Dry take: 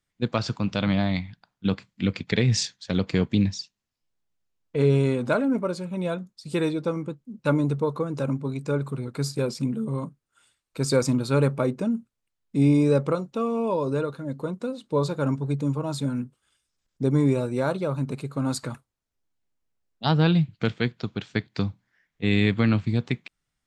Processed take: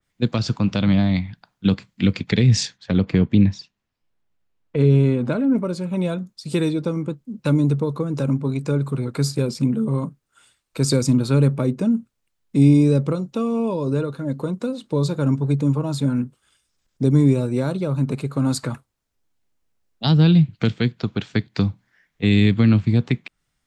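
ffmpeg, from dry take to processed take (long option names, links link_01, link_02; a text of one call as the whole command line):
ffmpeg -i in.wav -filter_complex "[0:a]asplit=3[link_01][link_02][link_03];[link_01]afade=type=out:start_time=2.77:duration=0.02[link_04];[link_02]bass=frequency=250:gain=0,treble=frequency=4000:gain=-11,afade=type=in:start_time=2.77:duration=0.02,afade=type=out:start_time=5.55:duration=0.02[link_05];[link_03]afade=type=in:start_time=5.55:duration=0.02[link_06];[link_04][link_05][link_06]amix=inputs=3:normalize=0,acrossover=split=340|3000[link_07][link_08][link_09];[link_08]acompressor=threshold=-35dB:ratio=6[link_10];[link_07][link_10][link_09]amix=inputs=3:normalize=0,adynamicequalizer=threshold=0.00398:dfrequency=3000:dqfactor=0.7:tfrequency=3000:tqfactor=0.7:attack=5:release=100:ratio=0.375:range=3.5:mode=cutabove:tftype=highshelf,volume=7dB" out.wav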